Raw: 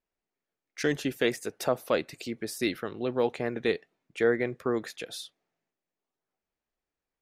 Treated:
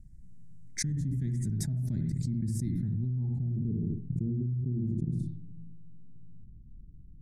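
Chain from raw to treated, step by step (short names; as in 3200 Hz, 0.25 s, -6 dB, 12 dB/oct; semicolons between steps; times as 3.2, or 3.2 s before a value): elliptic band-stop 150–8300 Hz, stop band 50 dB; dynamic EQ 150 Hz, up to -3 dB, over -56 dBFS, Q 8; low-pass sweep 1900 Hz -> 390 Hz, 2.9–3.78; on a send at -5 dB: reverb, pre-delay 55 ms; on the sum: fast leveller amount 100%; gain +5.5 dB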